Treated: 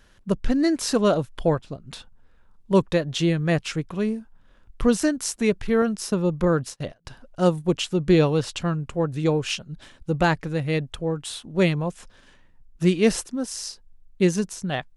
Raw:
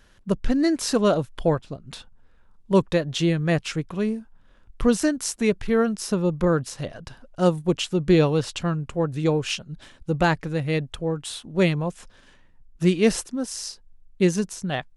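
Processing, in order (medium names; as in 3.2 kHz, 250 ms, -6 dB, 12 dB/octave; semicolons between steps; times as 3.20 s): 5.82–7.05 s: gate -33 dBFS, range -30 dB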